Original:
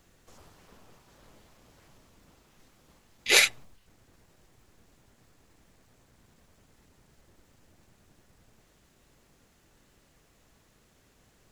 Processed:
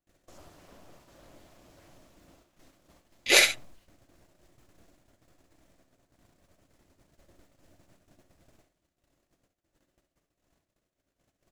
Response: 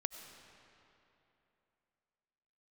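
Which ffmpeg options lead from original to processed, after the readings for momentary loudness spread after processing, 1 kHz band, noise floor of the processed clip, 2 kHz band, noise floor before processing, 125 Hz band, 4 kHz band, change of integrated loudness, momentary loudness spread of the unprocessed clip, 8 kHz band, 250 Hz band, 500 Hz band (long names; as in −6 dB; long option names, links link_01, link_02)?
20 LU, +1.0 dB, −83 dBFS, +0.5 dB, −65 dBFS, −1.0 dB, +0.5 dB, 0.0 dB, 12 LU, +0.5 dB, +4.0 dB, +3.0 dB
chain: -filter_complex "[0:a]agate=range=-29dB:threshold=-60dB:ratio=16:detection=peak,superequalizer=6b=1.78:8b=2,asplit=2[link_01][link_02];[link_02]aecho=0:1:57|68:0.188|0.266[link_03];[link_01][link_03]amix=inputs=2:normalize=0"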